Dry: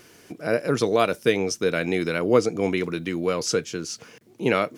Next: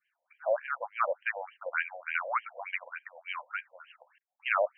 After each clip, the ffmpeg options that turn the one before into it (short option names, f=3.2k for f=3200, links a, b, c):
-af "agate=range=-33dB:threshold=-38dB:ratio=3:detection=peak,afftfilt=real='re*between(b*sr/1024,670*pow(2300/670,0.5+0.5*sin(2*PI*3.4*pts/sr))/1.41,670*pow(2300/670,0.5+0.5*sin(2*PI*3.4*pts/sr))*1.41)':imag='im*between(b*sr/1024,670*pow(2300/670,0.5+0.5*sin(2*PI*3.4*pts/sr))/1.41,670*pow(2300/670,0.5+0.5*sin(2*PI*3.4*pts/sr))*1.41)':win_size=1024:overlap=0.75"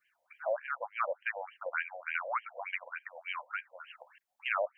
-af "acompressor=threshold=-52dB:ratio=1.5,volume=5.5dB"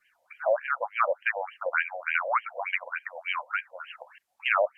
-af "volume=8dB" -ar 32000 -c:a libvorbis -b:a 128k